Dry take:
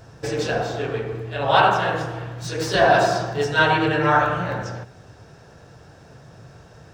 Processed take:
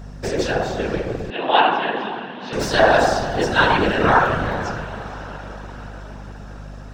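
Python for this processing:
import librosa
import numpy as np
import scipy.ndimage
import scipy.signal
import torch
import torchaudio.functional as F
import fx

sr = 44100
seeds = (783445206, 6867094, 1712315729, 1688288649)

y = fx.echo_diffused(x, sr, ms=484, feedback_pct=60, wet_db=-14.5)
y = fx.whisperise(y, sr, seeds[0])
y = fx.add_hum(y, sr, base_hz=50, snr_db=16)
y = fx.cabinet(y, sr, low_hz=220.0, low_slope=24, high_hz=3700.0, hz=(580.0, 1300.0, 2900.0), db=(-7, -8, 3), at=(1.3, 2.53))
y = F.gain(torch.from_numpy(y), 2.0).numpy()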